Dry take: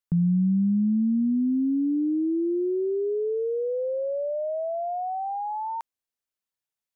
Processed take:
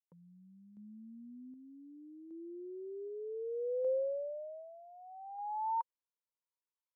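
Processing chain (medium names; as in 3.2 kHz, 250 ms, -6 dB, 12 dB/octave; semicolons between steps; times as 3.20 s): two resonant band-passes 700 Hz, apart 0.89 oct; random-step tremolo 1.3 Hz, depth 70%; tilt EQ +2.5 dB/octave; trim +1 dB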